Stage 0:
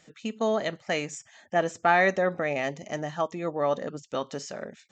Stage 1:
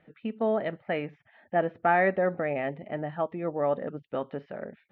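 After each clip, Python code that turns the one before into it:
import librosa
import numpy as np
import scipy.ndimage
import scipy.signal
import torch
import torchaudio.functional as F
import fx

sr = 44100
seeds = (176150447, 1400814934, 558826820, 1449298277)

y = scipy.signal.sosfilt(scipy.signal.bessel(8, 1700.0, 'lowpass', norm='mag', fs=sr, output='sos'), x)
y = fx.peak_eq(y, sr, hz=1100.0, db=-5.0, octaves=0.34)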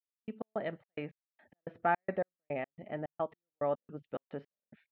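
y = fx.step_gate(x, sr, bpm=108, pattern='..x.xx.x', floor_db=-60.0, edge_ms=4.5)
y = y * librosa.db_to_amplitude(-5.5)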